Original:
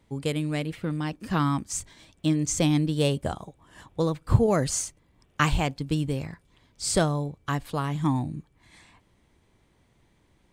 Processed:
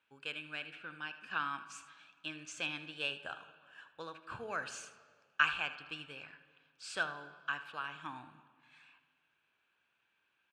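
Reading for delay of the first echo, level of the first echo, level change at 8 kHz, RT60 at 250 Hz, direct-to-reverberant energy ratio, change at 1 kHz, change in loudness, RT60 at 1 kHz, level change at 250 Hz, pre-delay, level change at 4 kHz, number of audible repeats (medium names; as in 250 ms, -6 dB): 78 ms, -14.5 dB, -20.5 dB, 1.9 s, 10.0 dB, -9.5 dB, -12.5 dB, 1.7 s, -26.5 dB, 10 ms, -7.5 dB, 1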